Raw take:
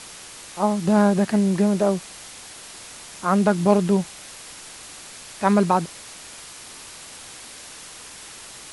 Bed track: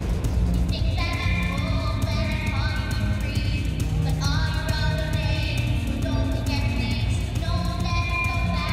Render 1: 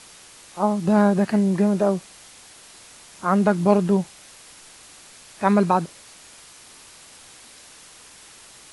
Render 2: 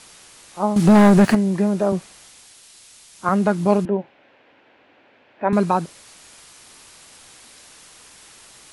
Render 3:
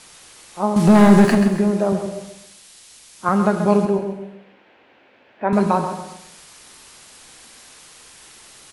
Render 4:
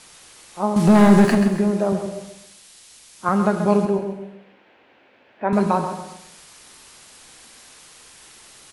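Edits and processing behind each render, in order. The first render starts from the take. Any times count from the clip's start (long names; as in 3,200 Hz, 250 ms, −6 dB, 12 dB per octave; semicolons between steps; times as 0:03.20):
noise reduction from a noise print 6 dB
0:00.76–0:01.35: leveller curve on the samples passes 3; 0:01.92–0:03.29: multiband upward and downward expander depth 40%; 0:03.85–0:05.53: loudspeaker in its box 160–2,400 Hz, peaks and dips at 170 Hz −10 dB, 270 Hz +4 dB, 550 Hz +4 dB, 1,200 Hz −9 dB, 2,000 Hz −4 dB
repeating echo 133 ms, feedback 29%, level −9 dB; reverb whose tail is shaped and stops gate 400 ms falling, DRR 6.5 dB
level −1.5 dB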